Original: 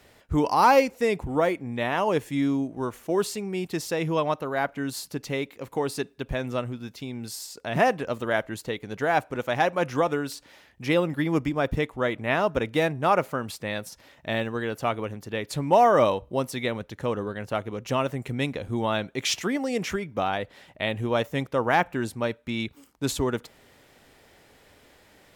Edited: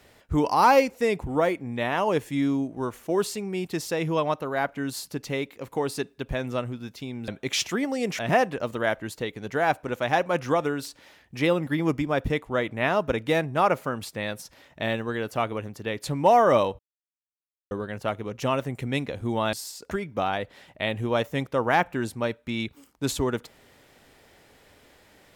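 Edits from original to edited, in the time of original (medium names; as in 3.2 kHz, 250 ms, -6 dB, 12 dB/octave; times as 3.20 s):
7.28–7.66 s: swap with 19.00–19.91 s
16.26–17.18 s: mute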